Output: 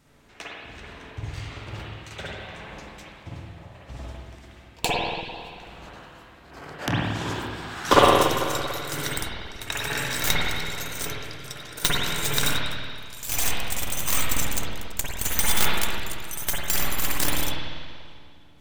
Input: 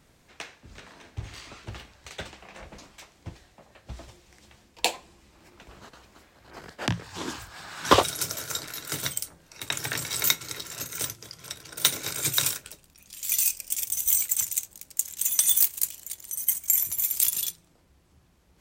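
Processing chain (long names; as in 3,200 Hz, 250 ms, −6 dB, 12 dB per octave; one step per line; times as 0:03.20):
stylus tracing distortion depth 0.094 ms
spring reverb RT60 2 s, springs 48/55 ms, chirp 55 ms, DRR −6.5 dB
level −1.5 dB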